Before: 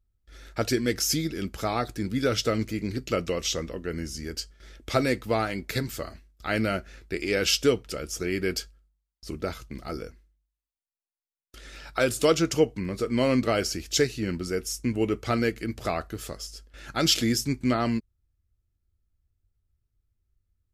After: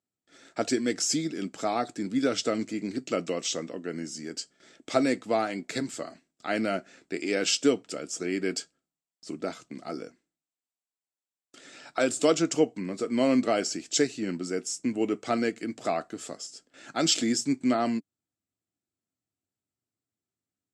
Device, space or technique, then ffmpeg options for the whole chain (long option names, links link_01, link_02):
television speaker: -af "highpass=frequency=160:width=0.5412,highpass=frequency=160:width=1.3066,equalizer=frequency=280:width_type=q:width=4:gain=7,equalizer=frequency=700:width_type=q:width=4:gain=7,equalizer=frequency=7700:width_type=q:width=4:gain=10,lowpass=frequency=8600:width=0.5412,lowpass=frequency=8600:width=1.3066,volume=-3.5dB"